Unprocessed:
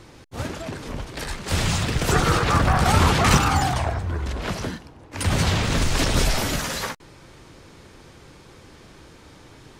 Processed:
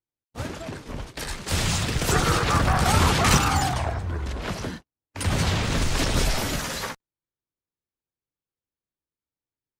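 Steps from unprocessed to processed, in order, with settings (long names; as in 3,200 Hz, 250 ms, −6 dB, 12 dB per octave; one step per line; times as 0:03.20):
0:01.08–0:03.69: high-shelf EQ 3,700 Hz +4.5 dB
noise gate −34 dBFS, range −49 dB
level −2.5 dB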